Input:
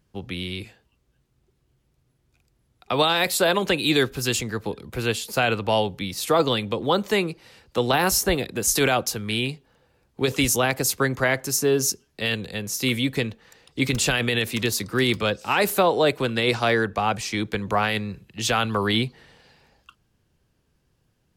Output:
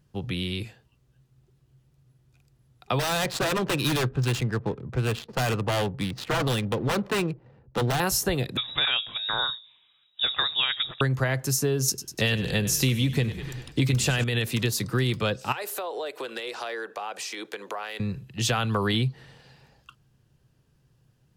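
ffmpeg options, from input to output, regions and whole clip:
ffmpeg -i in.wav -filter_complex "[0:a]asettb=1/sr,asplit=3[link_01][link_02][link_03];[link_01]atrim=end=2.994[link_04];[link_02]atrim=start=2.99:end=8,asetpts=PTS-STARTPTS,afade=type=in:duration=0.004:curve=qsin,afade=type=out:start_time=5.006:duration=0.004:curve=qsin,highshelf=frequency=8400:gain=-7.5,adynamicsmooth=sensitivity=6:basefreq=580,aeval=exprs='0.119*(abs(mod(val(0)/0.119+3,4)-2)-1)':channel_layout=same[link_05];[link_03]atrim=start=7.996[link_06];[link_04][link_05]acrossfade=duration=0.004:curve1=hsin:curve2=qsin[link_07];[link_07][link_06]acrossfade=duration=0.004:curve1=qsin:curve2=hsin,asettb=1/sr,asplit=3[link_08][link_09][link_10];[link_08]atrim=end=8.574[link_11];[link_09]atrim=start=8.57:end=11.01,asetpts=PTS-STARTPTS,afade=type=in:duration=0.004:curve=qsin,afade=type=out:start_time=2.436:duration=0.004:curve=qsin,bandreject=frequency=54.86:width_type=h:width=4,bandreject=frequency=109.72:width_type=h:width=4,bandreject=frequency=164.58:width_type=h:width=4,bandreject=frequency=219.44:width_type=h:width=4,bandreject=frequency=274.3:width_type=h:width=4,bandreject=frequency=329.16:width_type=h:width=4,bandreject=frequency=384.02:width_type=h:width=4,bandreject=frequency=438.88:width_type=h:width=4,bandreject=frequency=493.74:width_type=h:width=4,bandreject=frequency=548.6:width_type=h:width=4,bandreject=frequency=603.46:width_type=h:width=4,bandreject=frequency=658.32:width_type=h:width=4,lowpass=frequency=3300:width_type=q:width=0.5098,lowpass=frequency=3300:width_type=q:width=0.6013,lowpass=frequency=3300:width_type=q:width=0.9,lowpass=frequency=3300:width_type=q:width=2.563,afreqshift=-3900[link_12];[link_10]atrim=start=11.006[link_13];[link_11][link_12]acrossfade=duration=0.004:curve1=hsin:curve2=qsin[link_14];[link_14][link_13]acrossfade=duration=0.004:curve1=qsin:curve2=hsin,asettb=1/sr,asplit=3[link_15][link_16][link_17];[link_15]atrim=end=11.884[link_18];[link_16]atrim=start=11.88:end=14.24,asetpts=PTS-STARTPTS,afade=type=in:duration=0.004:curve=qsin,afade=type=out:start_time=2.356:duration=0.004:curve=qsin,acontrast=59,asplit=7[link_19][link_20][link_21][link_22][link_23][link_24][link_25];[link_20]adelay=98,afreqshift=-34,volume=-15dB[link_26];[link_21]adelay=196,afreqshift=-68,volume=-19.7dB[link_27];[link_22]adelay=294,afreqshift=-102,volume=-24.5dB[link_28];[link_23]adelay=392,afreqshift=-136,volume=-29.2dB[link_29];[link_24]adelay=490,afreqshift=-170,volume=-33.9dB[link_30];[link_25]adelay=588,afreqshift=-204,volume=-38.7dB[link_31];[link_19][link_26][link_27][link_28][link_29][link_30][link_31]amix=inputs=7:normalize=0,atrim=end_sample=104076[link_32];[link_17]atrim=start=14.236[link_33];[link_18][link_32]acrossfade=duration=0.004:curve1=hsin:curve2=qsin[link_34];[link_34][link_33]acrossfade=duration=0.004:curve1=qsin:curve2=hsin,asettb=1/sr,asplit=3[link_35][link_36][link_37];[link_35]atrim=end=15.524[link_38];[link_36]atrim=start=15.52:end=18,asetpts=PTS-STARTPTS,afade=type=in:duration=0.004:curve=qsin,afade=type=out:start_time=2.476:duration=0.004:curve=qsin,highpass=frequency=370:width=0.5412,highpass=frequency=370:width=1.3066,acompressor=threshold=-30dB:ratio=6:attack=3.2:release=140:knee=1:detection=peak,asoftclip=type=hard:threshold=-22.5dB[link_39];[link_37]atrim=start=17.996[link_40];[link_38][link_39]acrossfade=duration=0.004:curve1=hsin:curve2=qsin[link_41];[link_41][link_40]acrossfade=duration=0.004:curve1=qsin:curve2=hsin,equalizer=frequency=130:width_type=o:width=0.45:gain=11.5,bandreject=frequency=2200:width=18,acompressor=threshold=-21dB:ratio=6" out.wav

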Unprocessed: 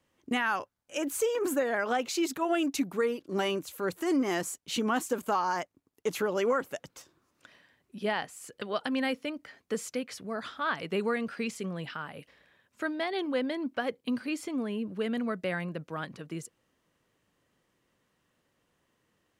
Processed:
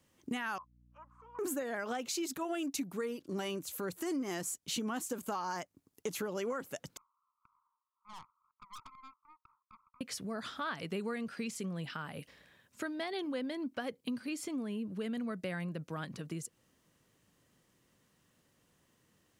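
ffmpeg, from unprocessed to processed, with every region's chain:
ffmpeg -i in.wav -filter_complex "[0:a]asettb=1/sr,asplit=3[link_01][link_02][link_03];[link_01]atrim=end=0.584[link_04];[link_02]atrim=start=0.58:end=1.39,asetpts=PTS-STARTPTS,afade=type=in:duration=0.004:curve=qsin,afade=type=out:start_time=0.806:duration=0.004:curve=qsin,agate=range=-33dB:threshold=-41dB:ratio=3:release=100:detection=peak,asuperpass=centerf=1100:order=4:qfactor=4.1,aeval=exprs='val(0)+0.000447*(sin(2*PI*60*n/s)+sin(2*PI*2*60*n/s)/2+sin(2*PI*3*60*n/s)/3+sin(2*PI*4*60*n/s)/4+sin(2*PI*5*60*n/s)/5)':channel_layout=same[link_05];[link_03]atrim=start=1.386[link_06];[link_04][link_05]acrossfade=duration=0.004:curve1=hsin:curve2=qsin[link_07];[link_07][link_06]acrossfade=duration=0.004:curve1=qsin:curve2=hsin,asettb=1/sr,asplit=3[link_08][link_09][link_10];[link_08]atrim=end=6.974[link_11];[link_09]atrim=start=6.97:end=10.01,asetpts=PTS-STARTPTS,afade=type=in:duration=0.004:curve=qsin,afade=type=out:start_time=3.036:duration=0.004:curve=qsin,asuperpass=centerf=1100:order=12:qfactor=2.6,aeval=exprs='(tanh(224*val(0)+0.6)-tanh(0.6))/224':channel_layout=same[link_12];[link_10]atrim=start=10.006[link_13];[link_11][link_12]acrossfade=duration=0.004:curve1=hsin:curve2=qsin[link_14];[link_14][link_13]acrossfade=duration=0.004:curve1=qsin:curve2=hsin,bass=frequency=250:gain=9,treble=frequency=4000:gain=7,acompressor=threshold=-38dB:ratio=2.5,lowshelf=frequency=110:gain=-7.5" out.wav

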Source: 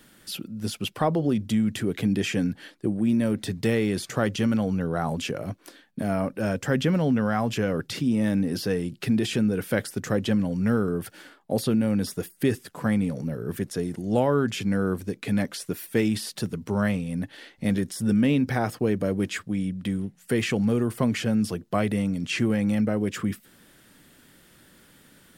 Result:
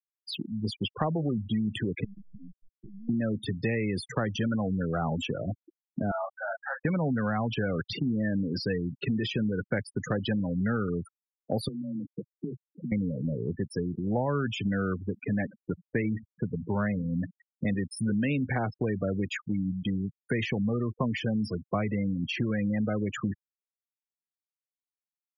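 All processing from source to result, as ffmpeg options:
ffmpeg -i in.wav -filter_complex "[0:a]asettb=1/sr,asplit=3[link_01][link_02][link_03];[link_01]atrim=end=2.044[link_04];[link_02]atrim=start=2.04:end=3.09,asetpts=PTS-STARTPTS,afade=type=in:duration=0.004:curve=qsin,afade=type=out:start_time=1.046:duration=0.004:curve=qsin,acompressor=threshold=-36dB:ratio=16:attack=3.2:release=140:knee=1:detection=peak,aeval=exprs='max(val(0),0)':channel_layout=same[link_05];[link_03]atrim=start=3.086[link_06];[link_04][link_05]acrossfade=duration=0.004:curve1=hsin:curve2=qsin[link_07];[link_07][link_06]acrossfade=duration=0.004:curve1=qsin:curve2=hsin,asettb=1/sr,asplit=3[link_08][link_09][link_10];[link_08]atrim=end=6.114[link_11];[link_09]atrim=start=6.11:end=6.85,asetpts=PTS-STARTPTS,afade=type=in:duration=0.004:curve=qsin,afade=type=out:start_time=0.736:duration=0.004:curve=qsin,asuperpass=centerf=1100:order=8:qfactor=0.99,asplit=2[link_12][link_13];[link_13]adelay=33,volume=-7.5dB[link_14];[link_12][link_14]amix=inputs=2:normalize=0,atrim=end_sample=32634[link_15];[link_10]atrim=start=6.846[link_16];[link_11][link_15]acrossfade=duration=0.004:curve1=hsin:curve2=qsin[link_17];[link_17][link_16]acrossfade=duration=0.004:curve1=qsin:curve2=hsin,asettb=1/sr,asplit=3[link_18][link_19][link_20];[link_18]atrim=end=11.684[link_21];[link_19]atrim=start=11.68:end=12.92,asetpts=PTS-STARTPTS,afade=type=in:duration=0.004:curve=qsin,afade=type=out:start_time=1.236:duration=0.004:curve=qsin,acompressor=threshold=-31dB:ratio=10:attack=3.2:release=140:knee=1:detection=peak,afreqshift=20,asuperpass=centerf=230:order=4:qfactor=0.61[link_22];[link_20]atrim=start=12.916[link_23];[link_21][link_22]acrossfade=duration=0.004:curve1=hsin:curve2=qsin[link_24];[link_24][link_23]acrossfade=duration=0.004:curve1=qsin:curve2=hsin,asettb=1/sr,asplit=3[link_25][link_26][link_27];[link_25]atrim=end=15.034[link_28];[link_26]atrim=start=15.03:end=17.68,asetpts=PTS-STARTPTS,afade=type=in:duration=0.004:curve=qsin,afade=type=out:start_time=2.646:duration=0.004:curve=qsin,lowpass=frequency=2500:width=0.5412,lowpass=frequency=2500:width=1.3066,aecho=1:1:82|164|246:0.112|0.0381|0.013,atrim=end_sample=116865[link_29];[link_27]atrim=start=17.676[link_30];[link_28][link_29]acrossfade=duration=0.004:curve1=hsin:curve2=qsin[link_31];[link_31][link_30]acrossfade=duration=0.004:curve1=qsin:curve2=hsin,afftfilt=real='re*gte(hypot(re,im),0.0447)':imag='im*gte(hypot(re,im),0.0447)':win_size=1024:overlap=0.75,acrossover=split=170|750[link_32][link_33][link_34];[link_32]acompressor=threshold=-34dB:ratio=4[link_35];[link_33]acompressor=threshold=-35dB:ratio=4[link_36];[link_34]acompressor=threshold=-35dB:ratio=4[link_37];[link_35][link_36][link_37]amix=inputs=3:normalize=0,volume=2.5dB" out.wav

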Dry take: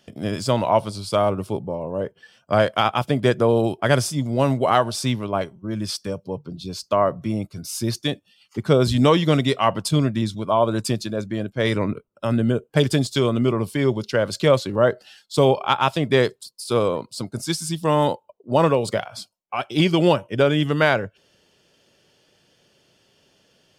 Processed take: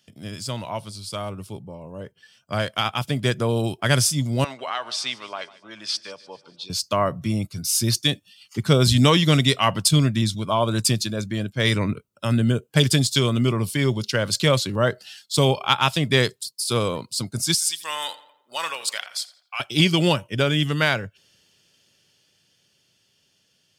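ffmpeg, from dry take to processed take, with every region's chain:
ffmpeg -i in.wav -filter_complex "[0:a]asettb=1/sr,asplit=3[link_01][link_02][link_03];[link_01]atrim=end=4.444[link_04];[link_02]atrim=start=4.44:end=6.7,asetpts=PTS-STARTPTS,afade=type=in:duration=0.004:curve=qsin,afade=type=out:start_time=2.256:duration=0.004:curve=qsin,highpass=680,lowpass=4200,acompressor=threshold=-26dB:ratio=2:attack=3.2:release=140:knee=1:detection=peak,aecho=1:1:148|296|444|592:0.106|0.0572|0.0309|0.0167,atrim=end_sample=99666[link_05];[link_03]atrim=start=6.696[link_06];[link_04][link_05]acrossfade=duration=0.004:curve1=hsin:curve2=qsin[link_07];[link_07][link_06]acrossfade=duration=0.004:curve1=qsin:curve2=hsin,asettb=1/sr,asplit=3[link_08][link_09][link_10];[link_08]atrim=end=17.544[link_11];[link_09]atrim=start=17.54:end=19.6,asetpts=PTS-STARTPTS,afade=type=in:duration=0.004:curve=qsin,afade=type=out:start_time=2.056:duration=0.004:curve=qsin,highpass=1300,asplit=2[link_12][link_13];[link_13]adelay=85,lowpass=frequency=3100:poles=1,volume=-15dB,asplit=2[link_14][link_15];[link_15]adelay=85,lowpass=frequency=3100:poles=1,volume=0.51,asplit=2[link_16][link_17];[link_17]adelay=85,lowpass=frequency=3100:poles=1,volume=0.51,asplit=2[link_18][link_19];[link_19]adelay=85,lowpass=frequency=3100:poles=1,volume=0.51,asplit=2[link_20][link_21];[link_21]adelay=85,lowpass=frequency=3100:poles=1,volume=0.51[link_22];[link_12][link_14][link_16][link_18][link_20][link_22]amix=inputs=6:normalize=0,atrim=end_sample=90846[link_23];[link_10]atrim=start=19.596[link_24];[link_11][link_23]acrossfade=duration=0.004:curve1=hsin:curve2=qsin[link_25];[link_25][link_24]acrossfade=duration=0.004:curve1=qsin:curve2=hsin,highpass=88,equalizer=frequency=530:width=0.32:gain=-14,dynaudnorm=framelen=300:gausssize=21:maxgain=12.5dB" out.wav

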